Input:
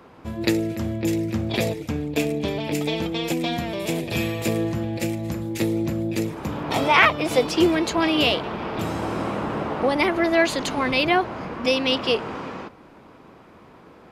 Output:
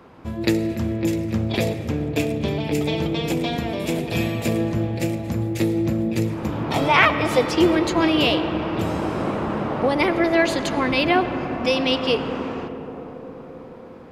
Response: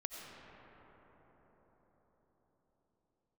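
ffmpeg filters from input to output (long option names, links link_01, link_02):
-filter_complex "[0:a]asplit=2[link_01][link_02];[link_02]lowshelf=frequency=330:gain=7[link_03];[1:a]atrim=start_sample=2205,highshelf=frequency=8000:gain=-12[link_04];[link_03][link_04]afir=irnorm=-1:irlink=0,volume=-3dB[link_05];[link_01][link_05]amix=inputs=2:normalize=0,volume=-3dB"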